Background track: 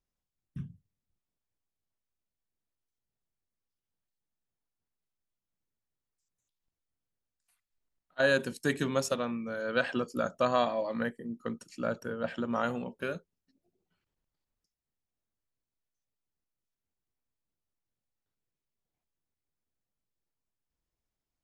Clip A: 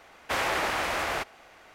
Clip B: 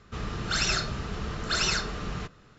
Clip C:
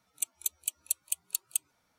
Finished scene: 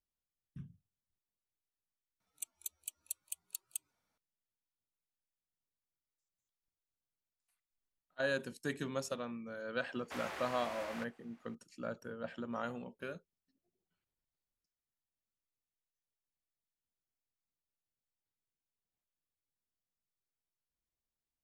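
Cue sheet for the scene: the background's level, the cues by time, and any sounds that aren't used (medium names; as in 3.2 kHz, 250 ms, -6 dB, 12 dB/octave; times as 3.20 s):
background track -9 dB
2.20 s: add C -11.5 dB
9.81 s: add A -17 dB + high-pass 70 Hz
not used: B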